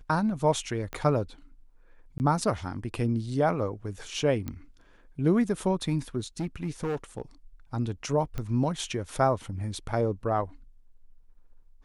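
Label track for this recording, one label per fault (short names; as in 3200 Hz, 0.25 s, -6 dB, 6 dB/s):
0.930000	0.930000	pop -21 dBFS
2.180000	2.200000	gap 19 ms
4.480000	4.480000	pop -20 dBFS
6.400000	7.220000	clipped -26 dBFS
8.380000	8.380000	pop -20 dBFS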